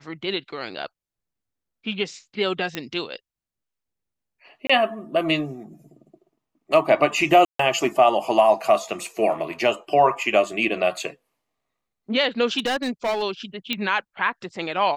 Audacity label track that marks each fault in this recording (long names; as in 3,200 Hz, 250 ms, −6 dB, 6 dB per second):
2.750000	2.750000	click −12 dBFS
4.670000	4.700000	drop-out 25 ms
7.450000	7.590000	drop-out 144 ms
12.580000	13.230000	clipping −20 dBFS
13.730000	13.730000	click −10 dBFS